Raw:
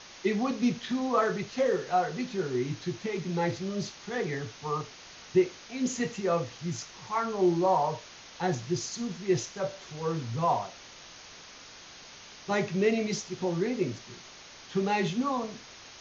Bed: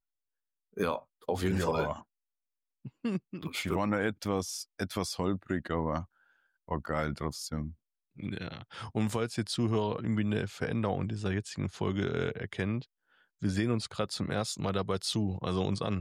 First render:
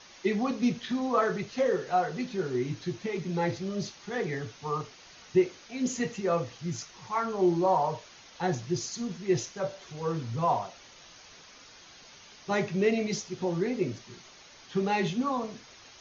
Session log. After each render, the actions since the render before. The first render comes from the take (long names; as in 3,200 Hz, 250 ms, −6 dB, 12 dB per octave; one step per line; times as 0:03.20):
broadband denoise 6 dB, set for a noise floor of −49 dBFS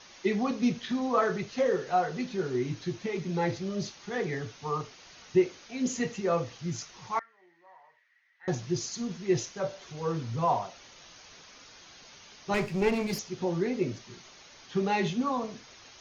0:07.19–0:08.48: resonant band-pass 1,900 Hz, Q 18
0:12.54–0:13.19: lower of the sound and its delayed copy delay 0.41 ms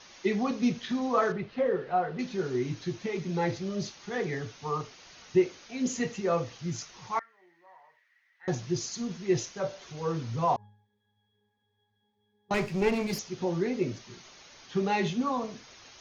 0:01.32–0:02.19: high-frequency loss of the air 330 metres
0:10.56–0:12.51: resonances in every octave G#, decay 0.69 s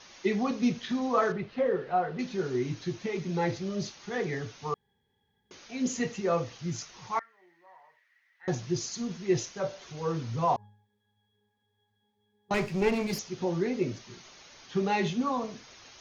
0:04.74–0:05.51: fill with room tone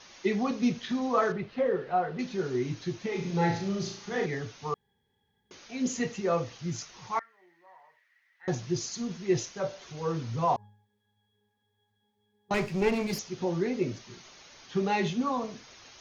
0:03.08–0:04.26: flutter between parallel walls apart 6.1 metres, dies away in 0.49 s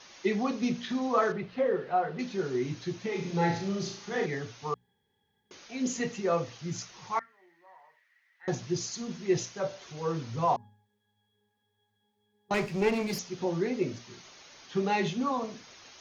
low-shelf EQ 63 Hz −8.5 dB
mains-hum notches 60/120/180/240 Hz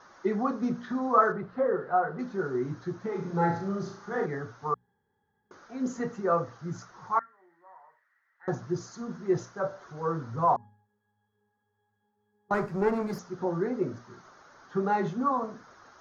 high shelf with overshoot 1,900 Hz −10.5 dB, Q 3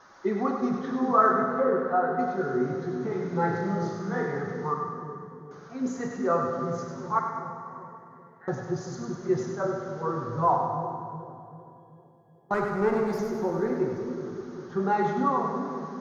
on a send: echo with a time of its own for lows and highs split 460 Hz, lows 384 ms, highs 99 ms, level −6 dB
on the sum: dense smooth reverb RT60 2.5 s, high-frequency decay 0.8×, DRR 4.5 dB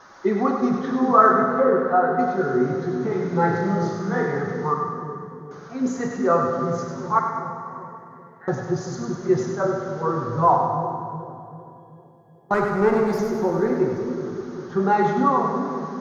level +6 dB